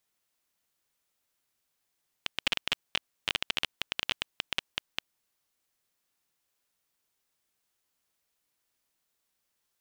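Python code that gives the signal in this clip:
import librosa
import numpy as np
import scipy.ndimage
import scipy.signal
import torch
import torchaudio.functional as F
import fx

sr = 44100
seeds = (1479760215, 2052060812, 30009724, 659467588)

y = fx.geiger_clicks(sr, seeds[0], length_s=2.87, per_s=15.0, level_db=-10.0)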